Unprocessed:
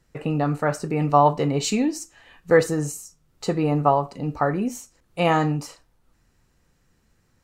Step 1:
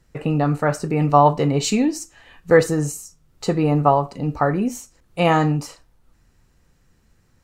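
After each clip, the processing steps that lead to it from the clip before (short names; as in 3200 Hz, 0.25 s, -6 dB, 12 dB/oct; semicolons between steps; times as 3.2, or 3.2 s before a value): low shelf 120 Hz +4.5 dB; gain +2.5 dB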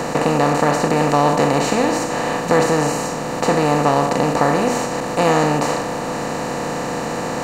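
per-bin compression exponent 0.2; gain -6.5 dB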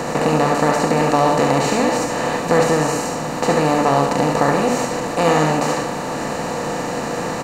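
echo 71 ms -5 dB; gain -1 dB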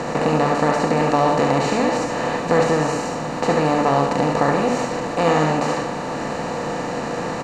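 air absorption 63 m; gain -1.5 dB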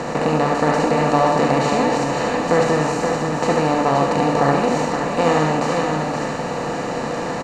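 echo 0.524 s -5.5 dB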